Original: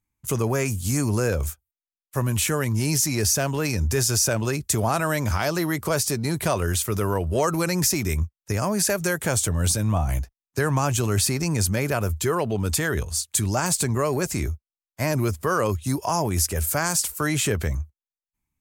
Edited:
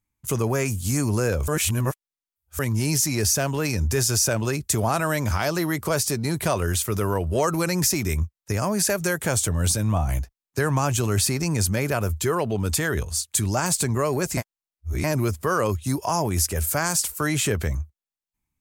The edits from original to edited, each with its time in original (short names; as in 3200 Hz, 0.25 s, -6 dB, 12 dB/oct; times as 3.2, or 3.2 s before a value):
1.48–2.59 reverse
14.37–15.04 reverse